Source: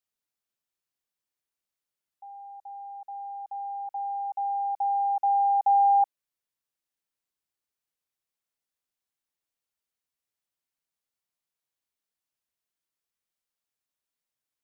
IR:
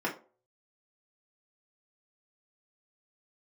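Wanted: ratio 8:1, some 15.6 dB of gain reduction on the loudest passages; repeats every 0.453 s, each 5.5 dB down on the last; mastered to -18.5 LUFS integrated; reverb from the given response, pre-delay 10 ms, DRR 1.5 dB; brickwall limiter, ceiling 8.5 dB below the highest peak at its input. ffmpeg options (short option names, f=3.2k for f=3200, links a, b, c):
-filter_complex "[0:a]acompressor=threshold=-35dB:ratio=8,alimiter=level_in=12dB:limit=-24dB:level=0:latency=1,volume=-12dB,aecho=1:1:453|906|1359|1812|2265|2718|3171:0.531|0.281|0.149|0.079|0.0419|0.0222|0.0118,asplit=2[a][b];[1:a]atrim=start_sample=2205,adelay=10[c];[b][c]afir=irnorm=-1:irlink=0,volume=-9.5dB[d];[a][d]amix=inputs=2:normalize=0,volume=20.5dB"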